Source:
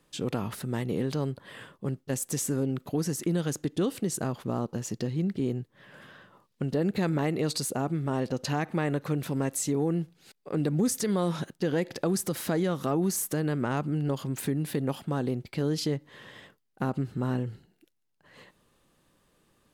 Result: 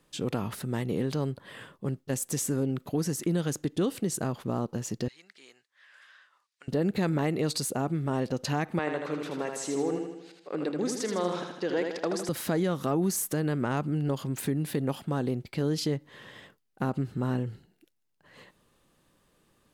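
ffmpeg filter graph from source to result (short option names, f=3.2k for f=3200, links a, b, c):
-filter_complex "[0:a]asettb=1/sr,asplit=3[a][b][c];[a]atrim=end=5.084[d];[b]atrim=start=5.08:end=6.68,asetpts=PTS-STARTPTS,afade=t=in:d=0.004:c=qsin,afade=t=out:st=1.596:d=0.004:c=qsin,asuperpass=centerf=3800:order=4:qfactor=0.55,equalizer=f=3.1k:w=2.4:g=-4.5[e];[c]atrim=start=6.676[f];[d][e]acrossfade=d=0.004:c1=hsin:c2=qsin[g];[g][f]acrossfade=d=0.004:c1=qsin:c2=hsin,asettb=1/sr,asplit=3[h][i][j];[h]atrim=end=8.794[k];[i]atrim=start=8.79:end=12.29,asetpts=PTS-STARTPTS,afade=t=in:d=0.004:c=qsin,afade=t=out:st=3.496:d=0.004:c=qsin,highpass=340,lowpass=5.7k,aecho=1:1:79|158|237|316|395|474|553:0.562|0.309|0.17|0.0936|0.0515|0.0283|0.0156,atrim=end_sample=154350[l];[j]atrim=start=12.286[m];[k][l]acrossfade=d=0.004:c1=hsin:c2=qsin[n];[n][m]acrossfade=d=0.004:c1=qsin:c2=hsin"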